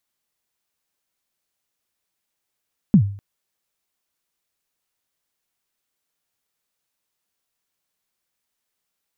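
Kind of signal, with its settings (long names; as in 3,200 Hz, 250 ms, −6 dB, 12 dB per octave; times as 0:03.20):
synth kick length 0.25 s, from 230 Hz, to 100 Hz, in 84 ms, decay 0.47 s, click off, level −5.5 dB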